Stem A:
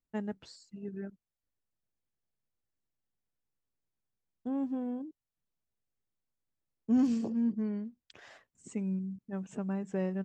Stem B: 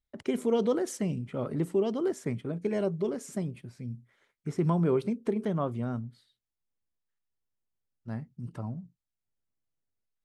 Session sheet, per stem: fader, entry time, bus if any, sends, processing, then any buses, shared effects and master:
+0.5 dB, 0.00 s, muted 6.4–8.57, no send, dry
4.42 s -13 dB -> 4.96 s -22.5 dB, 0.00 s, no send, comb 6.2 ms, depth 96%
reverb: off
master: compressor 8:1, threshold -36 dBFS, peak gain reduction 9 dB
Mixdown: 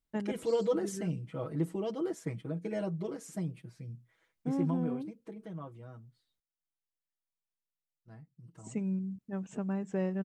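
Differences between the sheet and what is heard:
stem B -13.0 dB -> -7.0 dB; master: missing compressor 8:1, threshold -36 dBFS, peak gain reduction 9 dB

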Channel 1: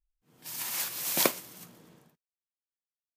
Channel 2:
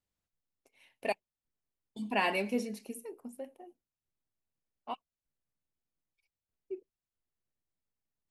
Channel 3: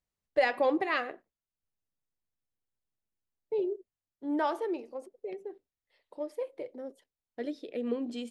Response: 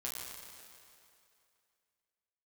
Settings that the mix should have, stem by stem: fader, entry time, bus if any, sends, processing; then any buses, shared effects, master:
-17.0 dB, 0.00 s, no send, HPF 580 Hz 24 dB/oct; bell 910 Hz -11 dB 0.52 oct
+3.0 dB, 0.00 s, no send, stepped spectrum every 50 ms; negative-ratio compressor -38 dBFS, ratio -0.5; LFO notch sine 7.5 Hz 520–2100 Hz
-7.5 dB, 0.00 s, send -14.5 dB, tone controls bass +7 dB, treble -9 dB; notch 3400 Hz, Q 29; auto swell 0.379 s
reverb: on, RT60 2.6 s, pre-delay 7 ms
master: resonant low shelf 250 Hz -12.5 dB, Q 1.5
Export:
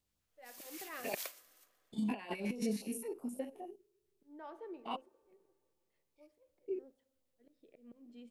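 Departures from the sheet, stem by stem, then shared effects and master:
stem 3 -7.5 dB -> -16.5 dB; master: missing resonant low shelf 250 Hz -12.5 dB, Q 1.5

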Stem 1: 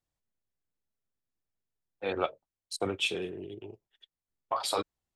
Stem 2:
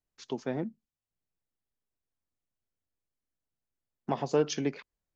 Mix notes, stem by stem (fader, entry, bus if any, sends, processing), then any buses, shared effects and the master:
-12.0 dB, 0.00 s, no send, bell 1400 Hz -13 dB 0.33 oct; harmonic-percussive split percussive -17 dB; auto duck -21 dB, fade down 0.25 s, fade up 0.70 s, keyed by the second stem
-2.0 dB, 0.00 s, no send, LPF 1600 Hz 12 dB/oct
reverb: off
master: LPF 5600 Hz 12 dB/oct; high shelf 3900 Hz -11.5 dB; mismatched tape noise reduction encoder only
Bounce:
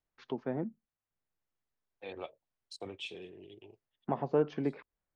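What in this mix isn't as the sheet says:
stem 1: missing harmonic-percussive split percussive -17 dB; master: missing high shelf 3900 Hz -11.5 dB

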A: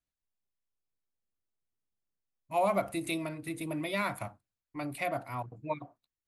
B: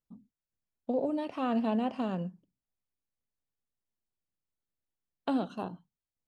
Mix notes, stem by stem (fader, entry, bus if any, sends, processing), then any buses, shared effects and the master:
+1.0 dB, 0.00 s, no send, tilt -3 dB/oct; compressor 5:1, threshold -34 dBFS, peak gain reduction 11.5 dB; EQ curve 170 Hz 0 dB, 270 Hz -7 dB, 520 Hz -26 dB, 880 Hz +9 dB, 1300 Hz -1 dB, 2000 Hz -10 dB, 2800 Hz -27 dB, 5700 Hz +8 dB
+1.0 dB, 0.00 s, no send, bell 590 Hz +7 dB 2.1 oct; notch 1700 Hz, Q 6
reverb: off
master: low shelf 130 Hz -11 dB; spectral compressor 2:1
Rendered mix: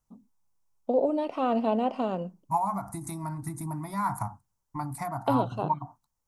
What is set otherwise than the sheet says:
stem A +1.0 dB -> +10.0 dB; master: missing spectral compressor 2:1

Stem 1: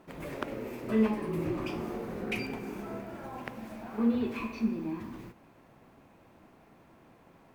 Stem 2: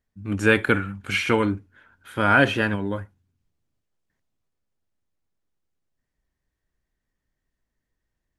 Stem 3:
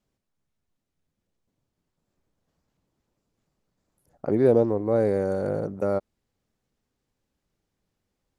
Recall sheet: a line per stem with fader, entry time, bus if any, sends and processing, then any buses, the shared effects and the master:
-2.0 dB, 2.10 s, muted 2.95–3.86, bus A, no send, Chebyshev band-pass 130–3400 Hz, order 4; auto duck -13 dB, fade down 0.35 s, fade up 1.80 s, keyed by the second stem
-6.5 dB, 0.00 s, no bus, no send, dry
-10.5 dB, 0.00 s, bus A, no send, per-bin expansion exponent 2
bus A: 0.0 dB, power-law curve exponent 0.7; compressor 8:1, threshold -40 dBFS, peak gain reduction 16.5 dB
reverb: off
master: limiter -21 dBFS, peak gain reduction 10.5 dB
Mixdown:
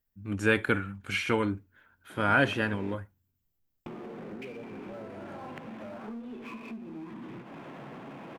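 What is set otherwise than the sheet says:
stem 1 -2.0 dB -> +4.5 dB; master: missing limiter -21 dBFS, peak gain reduction 10.5 dB

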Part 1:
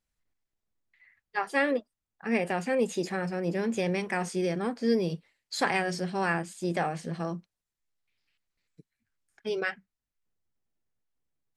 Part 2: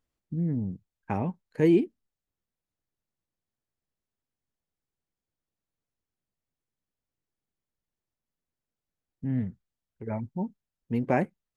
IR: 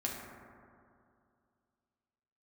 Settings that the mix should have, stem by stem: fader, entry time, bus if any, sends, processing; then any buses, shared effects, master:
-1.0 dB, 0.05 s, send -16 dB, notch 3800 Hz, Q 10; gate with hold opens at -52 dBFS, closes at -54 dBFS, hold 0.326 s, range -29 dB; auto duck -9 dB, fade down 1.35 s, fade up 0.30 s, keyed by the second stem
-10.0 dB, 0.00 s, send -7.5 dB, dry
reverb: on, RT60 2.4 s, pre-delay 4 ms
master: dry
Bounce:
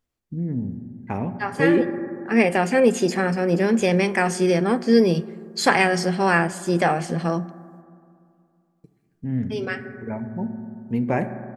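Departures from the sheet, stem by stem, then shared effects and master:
stem 1 -1.0 dB -> +8.5 dB; stem 2 -10.0 dB -> -0.5 dB

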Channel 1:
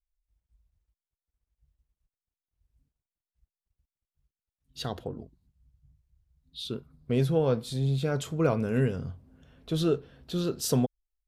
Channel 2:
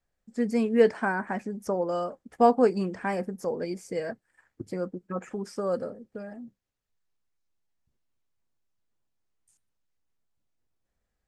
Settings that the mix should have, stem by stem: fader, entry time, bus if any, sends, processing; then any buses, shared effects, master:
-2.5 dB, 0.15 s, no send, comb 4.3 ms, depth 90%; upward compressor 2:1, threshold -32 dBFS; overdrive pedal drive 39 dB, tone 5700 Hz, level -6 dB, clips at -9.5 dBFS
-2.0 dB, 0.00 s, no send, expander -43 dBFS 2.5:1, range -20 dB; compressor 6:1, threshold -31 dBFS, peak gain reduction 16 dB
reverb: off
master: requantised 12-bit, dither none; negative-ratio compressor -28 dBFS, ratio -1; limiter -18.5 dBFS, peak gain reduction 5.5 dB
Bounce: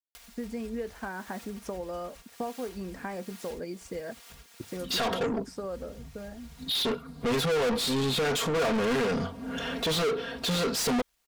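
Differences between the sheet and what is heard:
stem 1 -2.5 dB -> -10.5 dB; master: missing negative-ratio compressor -28 dBFS, ratio -1

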